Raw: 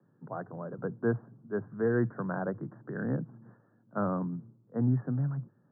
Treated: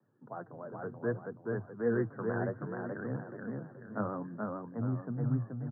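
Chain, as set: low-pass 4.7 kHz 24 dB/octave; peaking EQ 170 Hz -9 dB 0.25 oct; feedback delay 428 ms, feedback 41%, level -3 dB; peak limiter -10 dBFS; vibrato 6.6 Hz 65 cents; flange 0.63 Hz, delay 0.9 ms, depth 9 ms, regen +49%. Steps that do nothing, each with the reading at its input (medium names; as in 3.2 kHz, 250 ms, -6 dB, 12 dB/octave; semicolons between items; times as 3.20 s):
low-pass 4.7 kHz: input has nothing above 1.8 kHz; peak limiter -10 dBFS: peak at its input -15.5 dBFS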